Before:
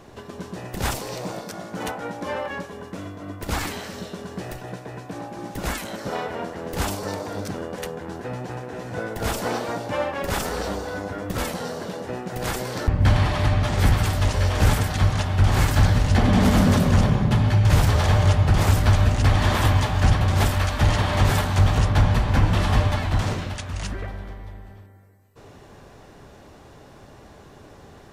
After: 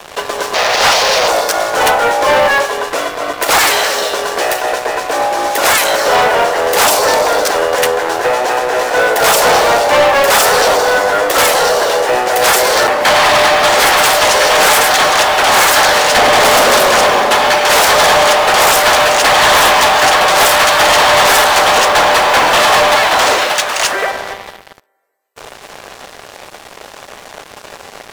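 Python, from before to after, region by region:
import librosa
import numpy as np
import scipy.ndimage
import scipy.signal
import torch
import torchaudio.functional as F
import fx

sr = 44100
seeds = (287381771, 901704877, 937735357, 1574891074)

y = fx.chain(x, sr, fx.delta_mod(bps=32000, step_db=-26.0),
    fx.highpass(hz=420.0, slope=24), at=(0.54, 1.28))
y = scipy.signal.sosfilt(scipy.signal.butter(4, 490.0, 'highpass', fs=sr, output='sos'), y)
y = fx.leveller(y, sr, passes=5)
y = y * 10.0 ** (6.0 / 20.0)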